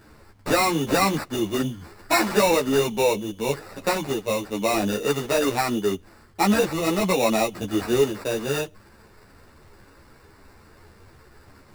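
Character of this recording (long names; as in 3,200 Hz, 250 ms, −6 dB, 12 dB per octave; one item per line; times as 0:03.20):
aliases and images of a low sample rate 3,200 Hz, jitter 0%
a shimmering, thickened sound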